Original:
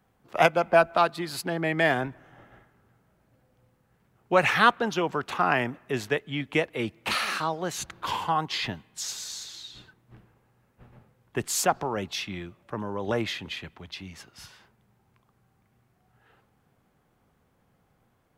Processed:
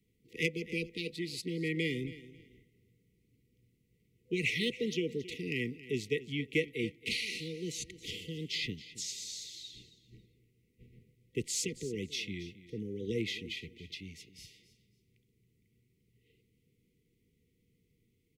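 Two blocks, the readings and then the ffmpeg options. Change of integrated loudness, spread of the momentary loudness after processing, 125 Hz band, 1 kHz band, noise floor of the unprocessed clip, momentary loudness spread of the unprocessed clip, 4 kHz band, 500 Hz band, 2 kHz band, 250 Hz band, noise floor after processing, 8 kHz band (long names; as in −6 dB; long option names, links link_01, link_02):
−9.5 dB, 13 LU, −5.0 dB, below −40 dB, −69 dBFS, 16 LU, −5.0 dB, −10.5 dB, −10.0 dB, −5.0 dB, −75 dBFS, −6.5 dB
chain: -filter_complex "[0:a]acrossover=split=9700[link_01][link_02];[link_02]acompressor=threshold=-58dB:ratio=4:attack=1:release=60[link_03];[link_01][link_03]amix=inputs=2:normalize=0,acrossover=split=390|1400|1900[link_04][link_05][link_06][link_07];[link_07]volume=21.5dB,asoftclip=hard,volume=-21.5dB[link_08];[link_04][link_05][link_06][link_08]amix=inputs=4:normalize=0,aecho=1:1:273|546:0.15|0.0344,afftfilt=real='re*(1-between(b*sr/4096,500,1900))':imag='im*(1-between(b*sr/4096,500,1900))':win_size=4096:overlap=0.75,volume=-5dB"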